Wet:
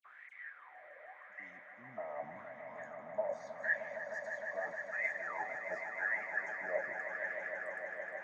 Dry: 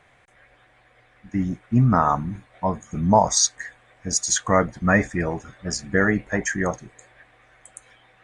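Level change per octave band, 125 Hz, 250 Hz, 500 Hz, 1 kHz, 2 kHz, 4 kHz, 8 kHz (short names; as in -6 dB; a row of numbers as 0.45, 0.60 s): under -40 dB, -35.5 dB, -15.0 dB, -20.5 dB, -8.5 dB, under -35 dB, under -40 dB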